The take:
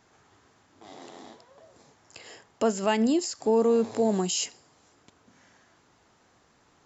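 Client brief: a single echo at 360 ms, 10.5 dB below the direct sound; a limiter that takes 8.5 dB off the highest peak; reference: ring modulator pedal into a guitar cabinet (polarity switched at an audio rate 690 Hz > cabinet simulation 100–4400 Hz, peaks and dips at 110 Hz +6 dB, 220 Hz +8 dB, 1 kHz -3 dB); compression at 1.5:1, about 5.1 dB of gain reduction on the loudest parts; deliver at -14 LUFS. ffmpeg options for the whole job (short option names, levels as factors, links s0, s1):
-af "acompressor=threshold=0.0224:ratio=1.5,alimiter=level_in=1.12:limit=0.0631:level=0:latency=1,volume=0.891,aecho=1:1:360:0.299,aeval=exprs='val(0)*sgn(sin(2*PI*690*n/s))':c=same,highpass=100,equalizer=f=110:t=q:w=4:g=6,equalizer=f=220:t=q:w=4:g=8,equalizer=f=1000:t=q:w=4:g=-3,lowpass=f=4400:w=0.5412,lowpass=f=4400:w=1.3066,volume=9.44"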